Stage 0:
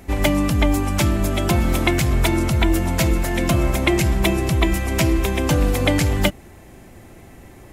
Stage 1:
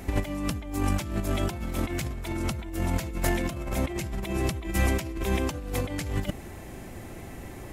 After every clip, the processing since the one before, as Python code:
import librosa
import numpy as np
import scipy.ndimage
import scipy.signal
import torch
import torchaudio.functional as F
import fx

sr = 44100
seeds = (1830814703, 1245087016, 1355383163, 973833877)

y = fx.over_compress(x, sr, threshold_db=-23.0, ratio=-0.5)
y = y * 10.0 ** (-4.0 / 20.0)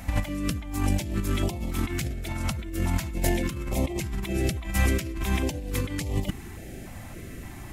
y = fx.filter_held_notch(x, sr, hz=3.5, low_hz=390.0, high_hz=1500.0)
y = y * 10.0 ** (2.0 / 20.0)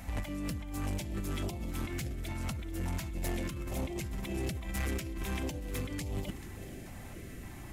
y = fx.echo_feedback(x, sr, ms=436, feedback_pct=59, wet_db=-17.5)
y = 10.0 ** (-24.0 / 20.0) * np.tanh(y / 10.0 ** (-24.0 / 20.0))
y = y * 10.0 ** (-5.5 / 20.0)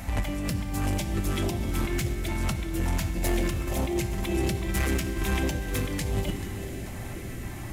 y = fx.rev_fdn(x, sr, rt60_s=3.1, lf_ratio=1.0, hf_ratio=0.9, size_ms=52.0, drr_db=7.5)
y = y * 10.0 ** (8.0 / 20.0)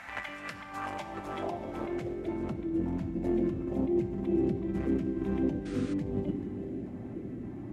y = fx.spec_paint(x, sr, seeds[0], shape='noise', start_s=5.65, length_s=0.29, low_hz=1200.0, high_hz=9800.0, level_db=-28.0)
y = fx.filter_sweep_bandpass(y, sr, from_hz=1600.0, to_hz=270.0, start_s=0.4, end_s=2.85, q=1.8)
y = y * 10.0 ** (4.0 / 20.0)